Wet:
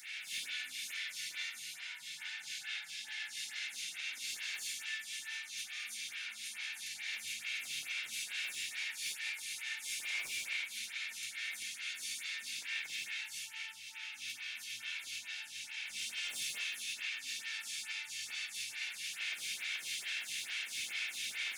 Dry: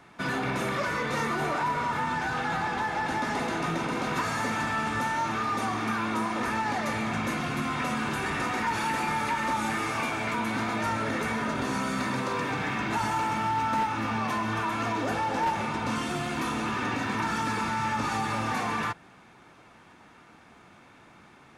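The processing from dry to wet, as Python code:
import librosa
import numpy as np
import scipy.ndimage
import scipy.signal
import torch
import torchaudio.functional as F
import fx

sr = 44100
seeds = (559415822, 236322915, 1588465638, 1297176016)

p1 = 10.0 ** (-26.5 / 20.0) * np.tanh(x / 10.0 ** (-26.5 / 20.0))
p2 = x + (p1 * 10.0 ** (-3.5 / 20.0))
p3 = fx.over_compress(p2, sr, threshold_db=-38.0, ratio=-1.0)
p4 = scipy.signal.sosfilt(scipy.signal.cheby2(4, 40, 1200.0, 'highpass', fs=sr, output='sos'), p3)
p5 = fx.rev_gated(p4, sr, seeds[0], gate_ms=350, shape='rising', drr_db=-6.5)
p6 = np.clip(p5, -10.0 ** (-35.0 / 20.0), 10.0 ** (-35.0 / 20.0))
p7 = fx.stagger_phaser(p6, sr, hz=2.3)
y = p7 * 10.0 ** (5.0 / 20.0)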